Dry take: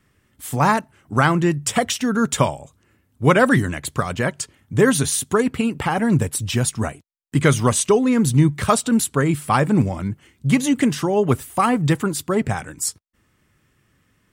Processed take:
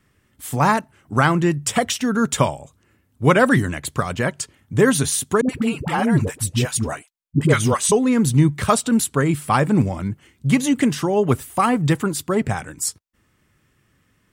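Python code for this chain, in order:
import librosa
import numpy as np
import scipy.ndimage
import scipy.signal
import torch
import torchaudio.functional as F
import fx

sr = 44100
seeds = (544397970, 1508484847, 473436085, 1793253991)

y = fx.dispersion(x, sr, late='highs', ms=79.0, hz=500.0, at=(5.41, 7.92))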